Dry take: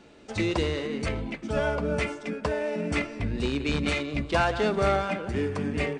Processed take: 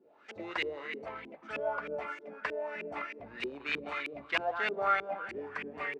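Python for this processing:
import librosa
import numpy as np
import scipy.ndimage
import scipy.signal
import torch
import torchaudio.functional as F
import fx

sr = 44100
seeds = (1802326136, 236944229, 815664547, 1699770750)

y = fx.filter_lfo_lowpass(x, sr, shape='saw_up', hz=3.2, low_hz=340.0, high_hz=2400.0, q=4.0)
y = np.diff(y, prepend=0.0)
y = y * 10.0 ** (8.0 / 20.0)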